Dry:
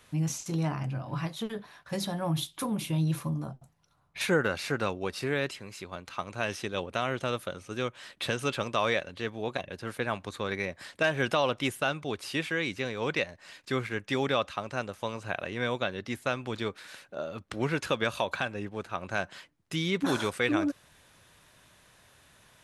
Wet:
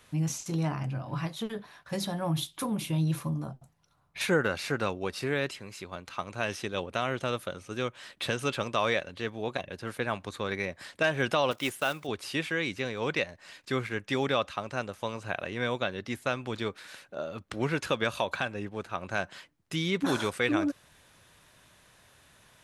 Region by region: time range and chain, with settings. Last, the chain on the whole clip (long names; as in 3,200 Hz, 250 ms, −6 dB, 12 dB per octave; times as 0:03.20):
0:11.51–0:12.09: one scale factor per block 5 bits + low-shelf EQ 160 Hz −10 dB
whole clip: no processing